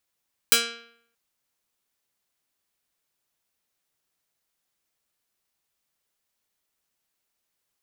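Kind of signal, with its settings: plucked string A#3, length 0.63 s, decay 0.67 s, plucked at 0.26, medium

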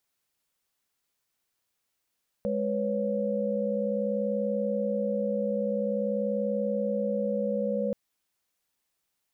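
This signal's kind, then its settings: chord G#3/B4/C#5 sine, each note -30 dBFS 5.48 s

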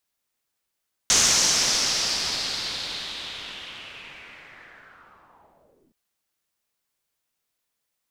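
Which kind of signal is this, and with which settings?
swept filtered noise white, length 4.82 s lowpass, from 6400 Hz, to 260 Hz, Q 3.4, linear, gain ramp -35 dB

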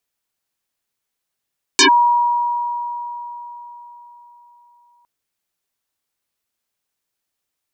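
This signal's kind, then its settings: FM tone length 3.26 s, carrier 958 Hz, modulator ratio 0.7, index 11, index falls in 0.10 s linear, decay 4.19 s, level -7 dB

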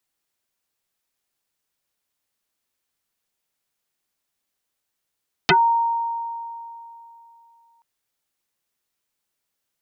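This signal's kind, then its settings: FM tone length 2.33 s, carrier 928 Hz, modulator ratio 0.59, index 9.1, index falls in 0.11 s exponential, decay 3.00 s, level -11 dB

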